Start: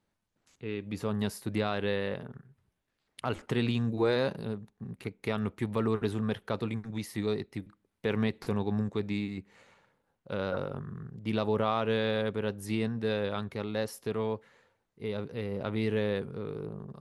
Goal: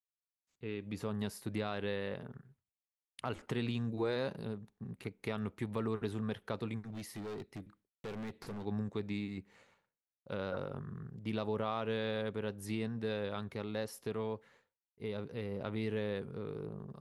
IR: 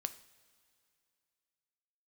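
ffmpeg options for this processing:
-filter_complex "[0:a]agate=range=0.0224:threshold=0.00178:ratio=3:detection=peak,acompressor=threshold=0.02:ratio=1.5,asettb=1/sr,asplit=3[s0][s1][s2];[s0]atrim=end=6.874[s3];[s1]atrim=start=6.87:end=8.65,asetpts=PTS-STARTPTS,afade=t=in:d=0.004:c=qsin,afade=t=out:st=1.776:d=0.004:c=qsin,asoftclip=type=hard:threshold=0.0158[s4];[s2]atrim=start=8.646[s5];[s3][s4]acrossfade=d=0.004:c1=hsin:c2=qsin[s6];[s6][s5]acrossfade=d=0.004:c1=qsin:c2=hsin,volume=0.668"

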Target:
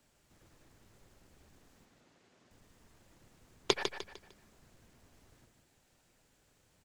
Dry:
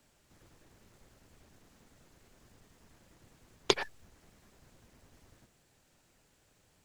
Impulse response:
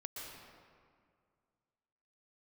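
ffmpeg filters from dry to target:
-filter_complex "[0:a]asettb=1/sr,asplit=3[s0][s1][s2];[s0]atrim=end=1.854[s3];[s1]atrim=start=1.85:end=2.51,asetpts=PTS-STARTPTS,afade=t=in:d=0.004:c=qsin,afade=t=out:st=0.656:d=0.004:c=qsin,highpass=170,lowpass=5900[s4];[s2]atrim=start=2.506[s5];[s3][s4]acrossfade=d=0.004:c1=hsin:c2=qsin[s6];[s6][s5]acrossfade=d=0.004:c1=qsin:c2=hsin,aecho=1:1:151|302|453|604:0.447|0.156|0.0547|0.0192,volume=0.75"

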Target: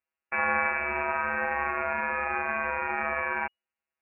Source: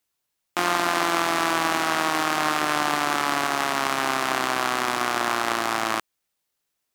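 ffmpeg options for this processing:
-af "afftfilt=real='hypot(re,im)*cos(PI*b)':imag='0':win_size=2048:overlap=0.75,asetrate=76293,aresample=44100,lowpass=f=2500:t=q:w=0.5098,lowpass=f=2500:t=q:w=0.6013,lowpass=f=2500:t=q:w=0.9,lowpass=f=2500:t=q:w=2.563,afreqshift=-2900"

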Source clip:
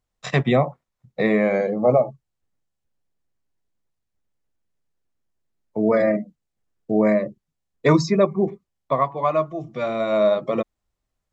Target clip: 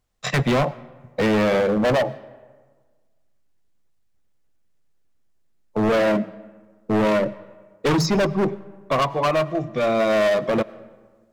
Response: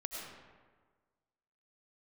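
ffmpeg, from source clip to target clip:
-filter_complex "[0:a]bandreject=f=940:w=22,volume=13.3,asoftclip=hard,volume=0.075,asplit=2[s0][s1];[1:a]atrim=start_sample=2205[s2];[s1][s2]afir=irnorm=-1:irlink=0,volume=0.141[s3];[s0][s3]amix=inputs=2:normalize=0,volume=1.78"

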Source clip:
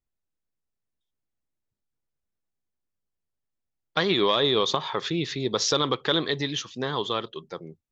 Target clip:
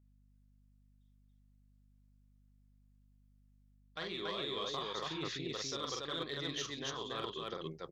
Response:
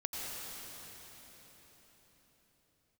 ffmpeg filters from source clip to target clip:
-af "lowshelf=f=440:g=-4.5,bandreject=f=880:w=12,areverse,acompressor=threshold=0.0141:ratio=6,areverse,aeval=exprs='0.0501*(cos(1*acos(clip(val(0)/0.0501,-1,1)))-cos(1*PI/2))+0.00224*(cos(3*acos(clip(val(0)/0.0501,-1,1)))-cos(3*PI/2))':c=same,aecho=1:1:43.73|282.8:0.708|0.891,aeval=exprs='val(0)+0.000708*(sin(2*PI*50*n/s)+sin(2*PI*2*50*n/s)/2+sin(2*PI*3*50*n/s)/3+sin(2*PI*4*50*n/s)/4+sin(2*PI*5*50*n/s)/5)':c=same,volume=0.75"

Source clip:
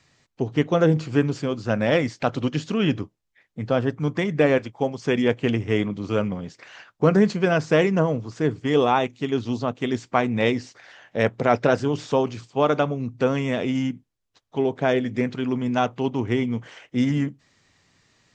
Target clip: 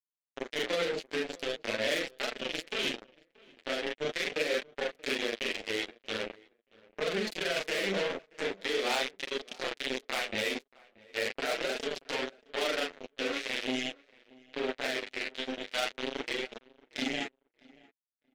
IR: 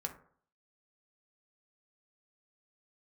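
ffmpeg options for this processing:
-filter_complex "[0:a]afftfilt=real='re':imag='-im':win_size=4096:overlap=0.75,bandreject=f=60:t=h:w=6,bandreject=f=120:t=h:w=6,bandreject=f=180:t=h:w=6,bandreject=f=240:t=h:w=6,bandreject=f=300:t=h:w=6,bandreject=f=360:t=h:w=6,bandreject=f=420:t=h:w=6,bandreject=f=480:t=h:w=6,acrusher=bits=3:mix=0:aa=0.5,equalizer=f=125:t=o:w=1:g=-11,equalizer=f=250:t=o:w=1:g=4,equalizer=f=500:t=o:w=1:g=6,equalizer=f=1000:t=o:w=1:g=-8,equalizer=f=2000:t=o:w=1:g=4,equalizer=f=4000:t=o:w=1:g=5,acompressor=threshold=0.0708:ratio=8,alimiter=limit=0.1:level=0:latency=1:release=80,crystalizer=i=6.5:c=0,flanger=delay=4.4:depth=7.8:regen=-8:speed=0.42:shape=triangular,bass=f=250:g=-6,treble=f=4000:g=-11,asplit=2[s0][s1];[s1]adelay=630,lowpass=f=2000:p=1,volume=0.0668,asplit=2[s2][s3];[s3]adelay=630,lowpass=f=2000:p=1,volume=0.19[s4];[s0][s2][s4]amix=inputs=3:normalize=0"

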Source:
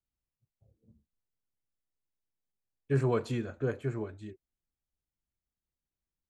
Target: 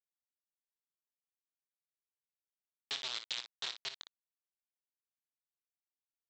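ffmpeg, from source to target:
-af "alimiter=limit=0.0944:level=0:latency=1:release=130,acompressor=threshold=0.0178:ratio=2.5,aresample=16000,acrusher=bits=4:mix=0:aa=0.000001,aresample=44100,bandpass=f=3800:t=q:w=3.5:csg=0,aecho=1:1:23|58:0.224|0.316,volume=2.99"

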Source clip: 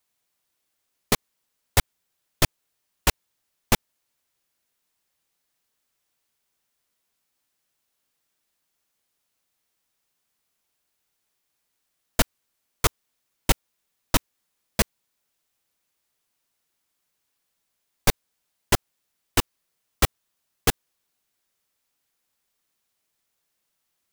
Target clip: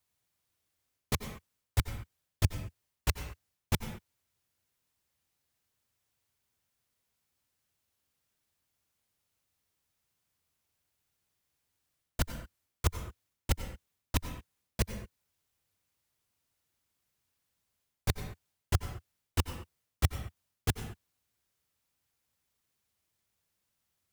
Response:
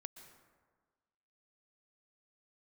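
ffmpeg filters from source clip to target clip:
-filter_complex "[0:a]areverse,acompressor=threshold=0.0501:ratio=6,areverse,equalizer=f=86:t=o:w=1.5:g=14.5[s0];[1:a]atrim=start_sample=2205,afade=t=out:st=0.38:d=0.01,atrim=end_sample=17199,asetrate=61740,aresample=44100[s1];[s0][s1]afir=irnorm=-1:irlink=0,volume=1.58"

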